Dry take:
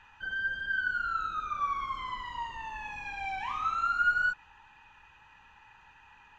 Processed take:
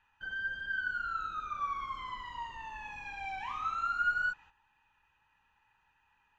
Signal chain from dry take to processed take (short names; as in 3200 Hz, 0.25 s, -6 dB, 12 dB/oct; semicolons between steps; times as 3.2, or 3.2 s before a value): gate -50 dBFS, range -11 dB; gain -4 dB